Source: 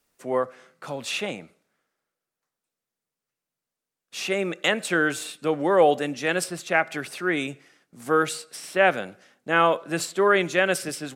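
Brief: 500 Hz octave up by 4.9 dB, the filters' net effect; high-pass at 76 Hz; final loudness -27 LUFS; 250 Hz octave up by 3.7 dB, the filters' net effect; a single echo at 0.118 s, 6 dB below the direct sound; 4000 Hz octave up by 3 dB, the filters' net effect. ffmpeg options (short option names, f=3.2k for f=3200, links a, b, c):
-af "highpass=76,equalizer=f=250:t=o:g=3,equalizer=f=500:t=o:g=5,equalizer=f=4k:t=o:g=4,aecho=1:1:118:0.501,volume=-7dB"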